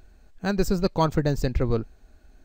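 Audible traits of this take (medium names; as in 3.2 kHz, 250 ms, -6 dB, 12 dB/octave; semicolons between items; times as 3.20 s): noise floor -56 dBFS; spectral tilt -6.5 dB/octave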